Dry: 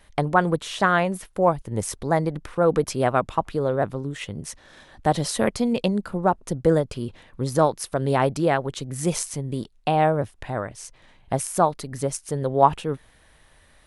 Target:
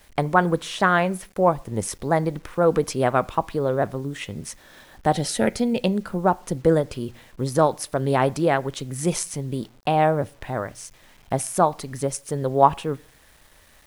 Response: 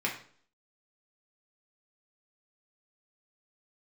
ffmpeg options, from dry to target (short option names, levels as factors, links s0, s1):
-filter_complex "[0:a]asettb=1/sr,asplit=3[s0][s1][s2];[s0]atrim=end=5.134[s3];[s1]atrim=start=5.13:end=5.8,asetpts=PTS-STARTPTS,afade=t=in:d=0.004:c=qsin,afade=t=out:st=0.666:d=0.004:c=qsin,asuperstop=centerf=1100:order=4:qfactor=4[s4];[s2]atrim=start=5.796[s5];[s3][s4]acrossfade=d=0.004:c1=hsin:c2=qsin[s6];[s6][s5]acrossfade=d=0.004:c1=qsin:c2=hsin,asplit=2[s7][s8];[1:a]atrim=start_sample=2205,afade=t=out:st=0.35:d=0.01,atrim=end_sample=15876[s9];[s8][s9]afir=irnorm=-1:irlink=0,volume=0.075[s10];[s7][s10]amix=inputs=2:normalize=0,acrusher=bits=8:mix=0:aa=0.000001"